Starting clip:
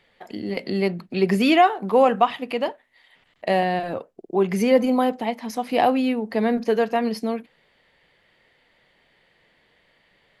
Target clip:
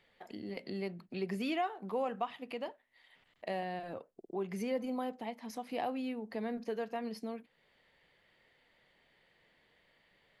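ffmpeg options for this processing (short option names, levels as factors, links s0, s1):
-af "acompressor=threshold=0.00794:ratio=1.5,volume=0.398"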